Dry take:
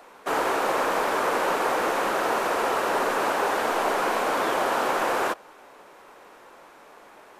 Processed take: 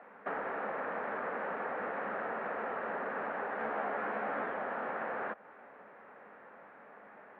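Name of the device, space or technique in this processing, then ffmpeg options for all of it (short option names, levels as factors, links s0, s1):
bass amplifier: -filter_complex "[0:a]acompressor=threshold=0.0316:ratio=5,highpass=f=81:w=0.5412,highpass=f=81:w=1.3066,equalizer=f=120:t=q:w=4:g=-4,equalizer=f=210:t=q:w=4:g=7,equalizer=f=340:t=q:w=4:g=-8,equalizer=f=1000:t=q:w=4:g=-5,equalizer=f=1800:t=q:w=4:g=4,lowpass=f=2000:w=0.5412,lowpass=f=2000:w=1.3066,asettb=1/sr,asplit=3[s0][s1][s2];[s0]atrim=end=3.594[s3];[s1]atrim=start=3.59:end=4.46,asetpts=PTS-STARTPTS,afade=t=in:d=0.004:c=qsin,afade=t=out:st=0.866:d=0.004:c=qsin,asplit=2[s4][s5];[s5]adelay=14,volume=0.708[s6];[s4][s6]amix=inputs=2:normalize=0,atrim=end_sample=38367[s7];[s2]atrim=start=4.456[s8];[s3][s7]acrossfade=d=0.004:c1=hsin:c2=qsin[s9];[s9][s8]acrossfade=d=0.004:c1=qsin:c2=hsin,volume=0.668"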